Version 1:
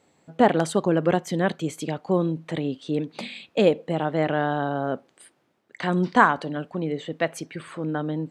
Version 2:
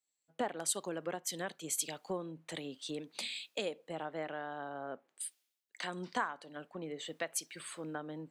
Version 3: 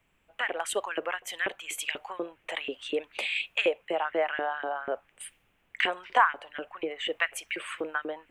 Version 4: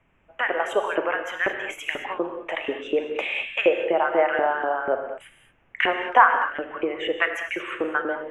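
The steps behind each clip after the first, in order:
RIAA curve recording; compression 5:1, threshold -32 dBFS, peak gain reduction 19.5 dB; three bands expanded up and down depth 100%; trim -5 dB
LFO high-pass saw up 4.1 Hz 340–2400 Hz; added noise pink -78 dBFS; resonant high shelf 3.5 kHz -8.5 dB, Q 3; trim +7.5 dB
boxcar filter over 10 samples; gated-style reverb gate 250 ms flat, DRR 5 dB; trim +7.5 dB

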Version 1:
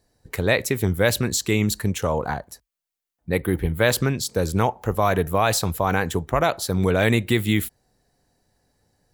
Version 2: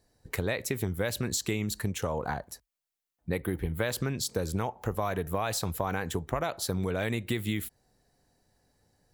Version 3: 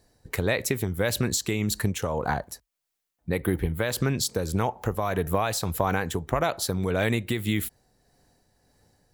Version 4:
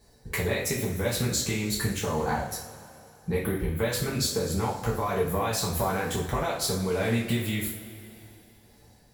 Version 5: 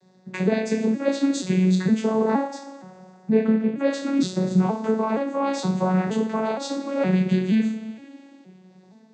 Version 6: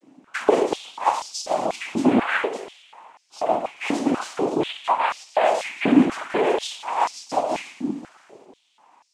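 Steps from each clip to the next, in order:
compression, threshold -24 dBFS, peak gain reduction 10.5 dB; trim -2.5 dB
tremolo 1.7 Hz, depth 36%; trim +6.5 dB
compression 4:1, threshold -30 dBFS, peak gain reduction 9.5 dB; two-slope reverb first 0.44 s, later 3 s, from -18 dB, DRR -6 dB; trim -1 dB
vocoder on a broken chord minor triad, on F#3, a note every 469 ms; trim +7.5 dB
tracing distortion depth 0.095 ms; noise-vocoded speech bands 4; step-sequenced high-pass 4.1 Hz 270–5100 Hz

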